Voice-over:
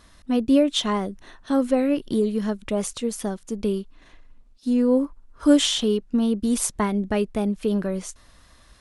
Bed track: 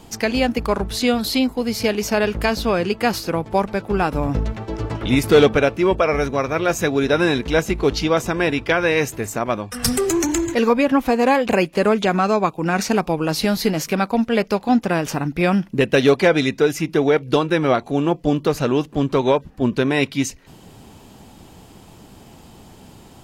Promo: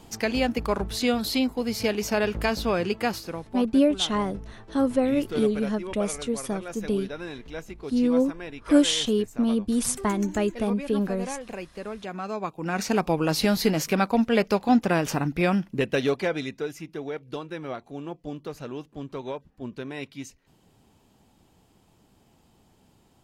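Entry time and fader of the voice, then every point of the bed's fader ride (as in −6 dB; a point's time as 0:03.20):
3.25 s, −2.0 dB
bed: 0:02.98 −5.5 dB
0:03.70 −19 dB
0:11.96 −19 dB
0:13.09 −3 dB
0:15.22 −3 dB
0:16.96 −17 dB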